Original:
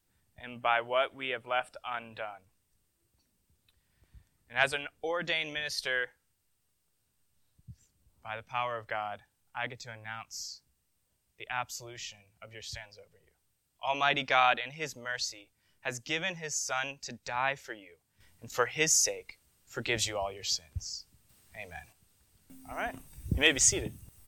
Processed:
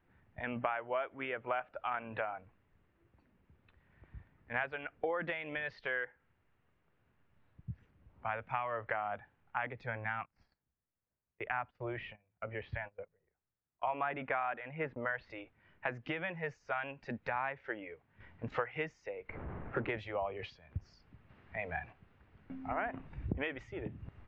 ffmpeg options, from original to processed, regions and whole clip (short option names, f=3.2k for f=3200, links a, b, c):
-filter_complex "[0:a]asettb=1/sr,asplit=3[a][b][c];[a]atrim=end=10.214[d];[b]atrim=start=10.21:end=15.3,asetpts=PTS-STARTPTS,afade=t=in:d=0.004:c=qsin,afade=t=out:st=5.086:d=0.004:c=qsin,lowpass=2.3k,agate=range=-20dB:threshold=-56dB:ratio=16:release=100:detection=peak[e];[c]atrim=start=15.296[f];[d][e]acrossfade=d=0.004:c1=hsin:c2=qsin[g];[g][f]acrossfade=d=0.004:c1=qsin:c2=hsin,asettb=1/sr,asplit=3[h][i][j];[h]atrim=end=19.294[k];[i]atrim=start=19.29:end=19.9,asetpts=PTS-STARTPTS,afade=t=in:d=0.004:c=qsin,afade=t=out:st=0.606:d=0.004:c=qsin,aeval=exprs='val(0)+0.5*0.0133*sgn(val(0))':c=same,highshelf=f=2.9k:g=-8.5,adynamicsmooth=sensitivity=5.5:basefreq=1.1k[l];[j]atrim=start=19.896[m];[k][l]acrossfade=d=0.004:c1=hsin:c2=qsin[n];[n][m]acrossfade=d=0.004:c1=qsin:c2=hsin,acompressor=threshold=-41dB:ratio=8,lowpass=f=2.2k:w=0.5412,lowpass=f=2.2k:w=1.3066,lowshelf=f=70:g=-7,volume=9dB"